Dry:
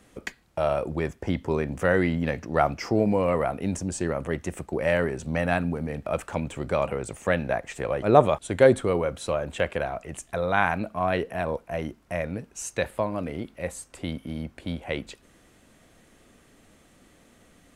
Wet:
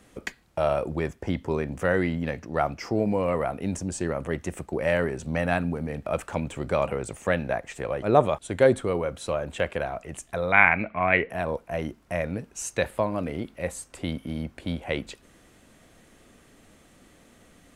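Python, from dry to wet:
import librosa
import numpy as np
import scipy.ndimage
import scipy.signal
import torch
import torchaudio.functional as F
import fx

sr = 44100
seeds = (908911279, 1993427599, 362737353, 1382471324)

y = fx.rider(x, sr, range_db=3, speed_s=2.0)
y = fx.lowpass_res(y, sr, hz=2200.0, q=9.8, at=(10.52, 11.3))
y = y * 10.0 ** (-1.5 / 20.0)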